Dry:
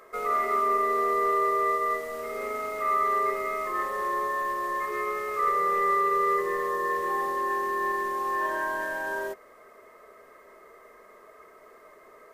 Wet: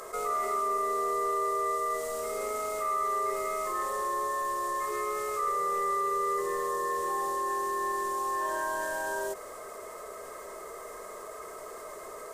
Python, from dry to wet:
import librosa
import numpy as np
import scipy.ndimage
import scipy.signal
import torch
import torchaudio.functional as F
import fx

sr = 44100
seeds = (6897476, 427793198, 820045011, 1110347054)

y = fx.graphic_eq_10(x, sr, hz=(250, 2000, 8000), db=(-7, -8, 11))
y = fx.env_flatten(y, sr, amount_pct=50)
y = y * 10.0 ** (-3.0 / 20.0)